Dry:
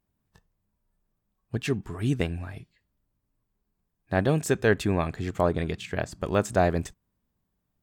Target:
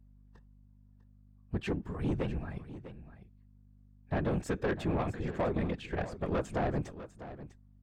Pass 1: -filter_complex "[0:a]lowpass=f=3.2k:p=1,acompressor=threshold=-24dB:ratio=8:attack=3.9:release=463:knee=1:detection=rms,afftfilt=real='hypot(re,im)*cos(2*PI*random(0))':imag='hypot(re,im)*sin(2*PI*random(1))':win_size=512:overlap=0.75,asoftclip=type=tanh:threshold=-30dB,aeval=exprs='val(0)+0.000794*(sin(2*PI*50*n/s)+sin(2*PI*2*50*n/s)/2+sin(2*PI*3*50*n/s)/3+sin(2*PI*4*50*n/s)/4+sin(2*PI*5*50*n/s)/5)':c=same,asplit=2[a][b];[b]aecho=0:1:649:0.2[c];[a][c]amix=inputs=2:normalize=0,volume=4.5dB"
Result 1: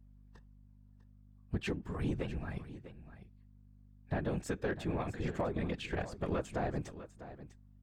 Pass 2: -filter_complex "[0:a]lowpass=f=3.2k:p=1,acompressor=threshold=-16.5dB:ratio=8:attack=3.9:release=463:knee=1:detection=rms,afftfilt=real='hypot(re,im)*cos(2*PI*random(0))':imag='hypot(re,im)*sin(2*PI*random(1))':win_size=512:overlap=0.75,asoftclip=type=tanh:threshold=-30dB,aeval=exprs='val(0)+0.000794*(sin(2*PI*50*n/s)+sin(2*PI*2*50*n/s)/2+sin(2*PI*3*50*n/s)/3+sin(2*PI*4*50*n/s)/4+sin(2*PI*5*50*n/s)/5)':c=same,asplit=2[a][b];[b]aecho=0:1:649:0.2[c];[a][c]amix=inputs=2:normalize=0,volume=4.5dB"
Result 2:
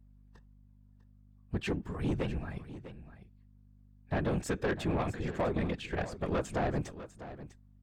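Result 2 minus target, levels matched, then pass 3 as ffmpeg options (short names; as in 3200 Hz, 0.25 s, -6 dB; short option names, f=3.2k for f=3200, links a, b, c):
4000 Hz band +3.5 dB
-filter_complex "[0:a]lowpass=f=1.6k:p=1,acompressor=threshold=-16.5dB:ratio=8:attack=3.9:release=463:knee=1:detection=rms,afftfilt=real='hypot(re,im)*cos(2*PI*random(0))':imag='hypot(re,im)*sin(2*PI*random(1))':win_size=512:overlap=0.75,asoftclip=type=tanh:threshold=-30dB,aeval=exprs='val(0)+0.000794*(sin(2*PI*50*n/s)+sin(2*PI*2*50*n/s)/2+sin(2*PI*3*50*n/s)/3+sin(2*PI*4*50*n/s)/4+sin(2*PI*5*50*n/s)/5)':c=same,asplit=2[a][b];[b]aecho=0:1:649:0.2[c];[a][c]amix=inputs=2:normalize=0,volume=4.5dB"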